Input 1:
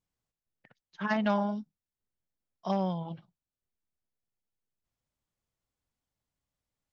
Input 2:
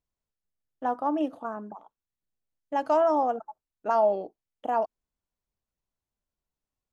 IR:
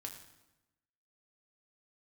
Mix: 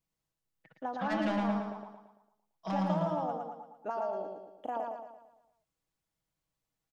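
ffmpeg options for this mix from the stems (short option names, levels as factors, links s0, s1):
-filter_complex "[0:a]highpass=f=98:w=0.5412,highpass=f=98:w=1.3066,aecho=1:1:6.2:0.97,asoftclip=type=tanh:threshold=0.0562,volume=0.631,asplit=2[s0][s1];[s1]volume=0.596[s2];[1:a]acompressor=threshold=0.0398:ratio=6,volume=0.562,asplit=2[s3][s4];[s4]volume=0.668[s5];[s2][s5]amix=inputs=2:normalize=0,aecho=0:1:113|226|339|452|565|678|791:1|0.47|0.221|0.104|0.0488|0.0229|0.0108[s6];[s0][s3][s6]amix=inputs=3:normalize=0"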